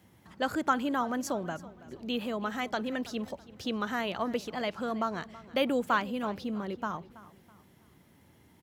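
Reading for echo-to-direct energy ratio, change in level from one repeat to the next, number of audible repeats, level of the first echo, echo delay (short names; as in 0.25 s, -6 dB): -18.0 dB, -9.0 dB, 2, -18.5 dB, 0.327 s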